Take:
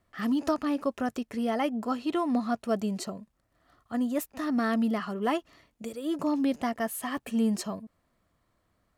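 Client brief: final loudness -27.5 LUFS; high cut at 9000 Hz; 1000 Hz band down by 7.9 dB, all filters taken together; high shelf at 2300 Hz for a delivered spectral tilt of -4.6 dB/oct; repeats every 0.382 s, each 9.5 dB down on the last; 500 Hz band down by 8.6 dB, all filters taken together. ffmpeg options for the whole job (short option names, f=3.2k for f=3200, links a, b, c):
-af "lowpass=9k,equalizer=f=500:t=o:g=-9,equalizer=f=1k:t=o:g=-9,highshelf=f=2.3k:g=6.5,aecho=1:1:382|764|1146|1528:0.335|0.111|0.0365|0.012,volume=5dB"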